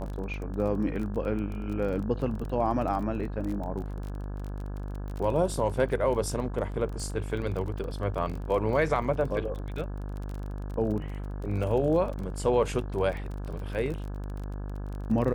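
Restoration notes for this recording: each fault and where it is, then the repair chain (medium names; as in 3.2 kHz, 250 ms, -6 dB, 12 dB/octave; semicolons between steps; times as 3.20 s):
buzz 50 Hz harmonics 34 -35 dBFS
crackle 29 per s -34 dBFS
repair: de-click; de-hum 50 Hz, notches 34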